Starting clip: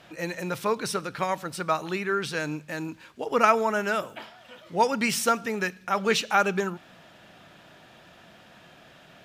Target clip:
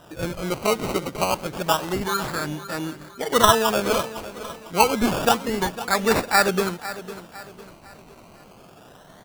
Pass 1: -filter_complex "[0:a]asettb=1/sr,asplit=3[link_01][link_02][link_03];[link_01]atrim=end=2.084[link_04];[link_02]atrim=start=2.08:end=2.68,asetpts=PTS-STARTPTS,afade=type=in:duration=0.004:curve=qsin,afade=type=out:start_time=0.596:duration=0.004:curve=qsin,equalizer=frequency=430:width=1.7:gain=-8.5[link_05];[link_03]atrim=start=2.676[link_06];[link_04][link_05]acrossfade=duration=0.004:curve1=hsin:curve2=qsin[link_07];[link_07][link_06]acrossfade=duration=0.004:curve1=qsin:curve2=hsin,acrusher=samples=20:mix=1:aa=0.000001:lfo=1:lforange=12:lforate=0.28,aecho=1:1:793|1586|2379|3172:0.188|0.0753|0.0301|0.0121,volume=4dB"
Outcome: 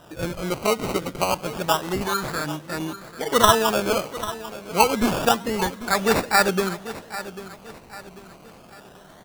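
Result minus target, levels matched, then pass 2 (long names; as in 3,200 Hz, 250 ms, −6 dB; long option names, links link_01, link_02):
echo 289 ms late
-filter_complex "[0:a]asettb=1/sr,asplit=3[link_01][link_02][link_03];[link_01]atrim=end=2.084[link_04];[link_02]atrim=start=2.08:end=2.68,asetpts=PTS-STARTPTS,afade=type=in:duration=0.004:curve=qsin,afade=type=out:start_time=0.596:duration=0.004:curve=qsin,equalizer=frequency=430:width=1.7:gain=-8.5[link_05];[link_03]atrim=start=2.676[link_06];[link_04][link_05]acrossfade=duration=0.004:curve1=hsin:curve2=qsin[link_07];[link_07][link_06]acrossfade=duration=0.004:curve1=qsin:curve2=hsin,acrusher=samples=20:mix=1:aa=0.000001:lfo=1:lforange=12:lforate=0.28,aecho=1:1:504|1008|1512|2016:0.188|0.0753|0.0301|0.0121,volume=4dB"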